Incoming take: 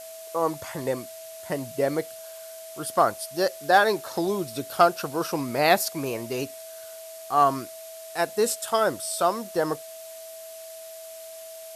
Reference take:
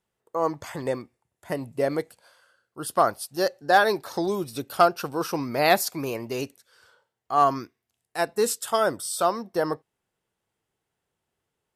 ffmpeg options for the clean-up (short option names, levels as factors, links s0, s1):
-af "bandreject=f=650:w=30,afftdn=nr=30:nf=-41"